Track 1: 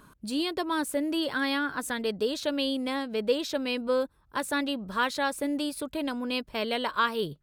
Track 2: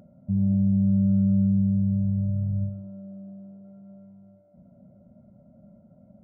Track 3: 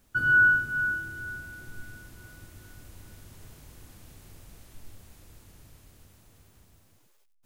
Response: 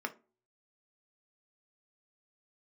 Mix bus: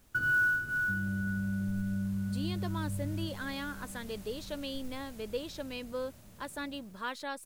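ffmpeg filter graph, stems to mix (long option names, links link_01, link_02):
-filter_complex "[0:a]adelay=2050,volume=-10.5dB[link_01];[1:a]adelay=600,volume=-8.5dB[link_02];[2:a]acrusher=bits=6:mode=log:mix=0:aa=0.000001,volume=1dB[link_03];[link_02][link_03]amix=inputs=2:normalize=0,acompressor=threshold=-33dB:ratio=2,volume=0dB[link_04];[link_01][link_04]amix=inputs=2:normalize=0"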